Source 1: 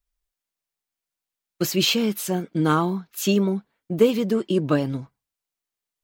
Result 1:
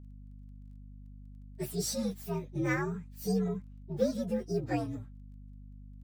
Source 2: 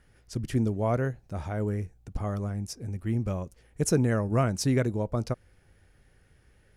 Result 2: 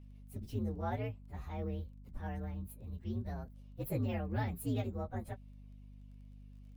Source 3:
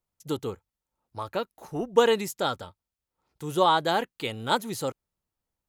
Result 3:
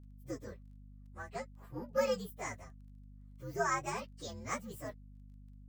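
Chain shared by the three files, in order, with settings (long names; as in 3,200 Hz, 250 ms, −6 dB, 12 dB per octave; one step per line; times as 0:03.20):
partials spread apart or drawn together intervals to 123%
mains hum 50 Hz, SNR 13 dB
surface crackle 23 per second −52 dBFS
level −9 dB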